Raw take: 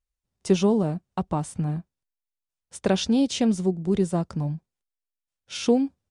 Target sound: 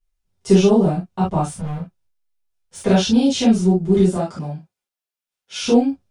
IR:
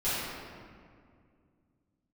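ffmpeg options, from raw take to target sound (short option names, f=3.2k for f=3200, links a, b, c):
-filter_complex "[0:a]asettb=1/sr,asplit=3[a][b][c];[a]atrim=end=1.464[d];[b]atrim=start=1.46:end=2.81,asetpts=PTS-STARTPTS,afade=t=in:d=0.004:c=qsin,afade=t=out:st=1.346:d=0.004:c=qsin,asoftclip=type=hard:threshold=-31dB[e];[c]atrim=start=2.806[f];[d][e]acrossfade=d=0.004:c1=hsin:c2=qsin[g];[g][f]acrossfade=d=0.004:c1=qsin:c2=hsin,asettb=1/sr,asplit=3[h][i][j];[h]atrim=end=4.134[k];[i]atrim=start=4.13:end=5.6,asetpts=PTS-STARTPTS,afade=t=in:d=0.004:c=qsin,afade=t=out:st=1.466:d=0.004:c=qsin,highpass=f=350:p=1[l];[j]atrim=start=5.596[m];[k][l]acrossfade=d=0.004:c1=hsin:c2=qsin[n];[n][m]acrossfade=d=0.004:c1=qsin:c2=hsin[o];[1:a]atrim=start_sample=2205,atrim=end_sample=3528[p];[o][p]afir=irnorm=-1:irlink=0"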